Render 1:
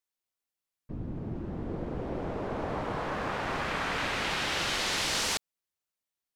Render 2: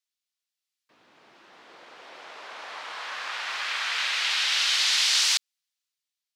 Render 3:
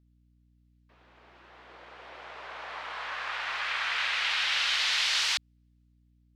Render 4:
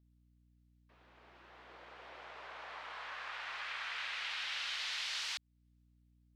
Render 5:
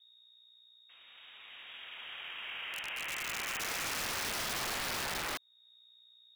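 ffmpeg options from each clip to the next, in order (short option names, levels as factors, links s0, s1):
-af "highpass=1200,equalizer=f=4300:w=0.58:g=11,dynaudnorm=f=260:g=7:m=1.78,volume=0.562"
-af "bass=f=250:g=-7,treble=f=4000:g=-11,aeval=exprs='val(0)+0.000708*(sin(2*PI*60*n/s)+sin(2*PI*2*60*n/s)/2+sin(2*PI*3*60*n/s)/3+sin(2*PI*4*60*n/s)/4+sin(2*PI*5*60*n/s)/5)':c=same"
-af "acompressor=threshold=0.00501:ratio=1.5,volume=0.596"
-af "lowpass=f=3200:t=q:w=0.5098,lowpass=f=3200:t=q:w=0.6013,lowpass=f=3200:t=q:w=0.9,lowpass=f=3200:t=q:w=2.563,afreqshift=-3800,acrusher=bits=8:mode=log:mix=0:aa=0.000001,aeval=exprs='(mod(75*val(0)+1,2)-1)/75':c=same,volume=2.24"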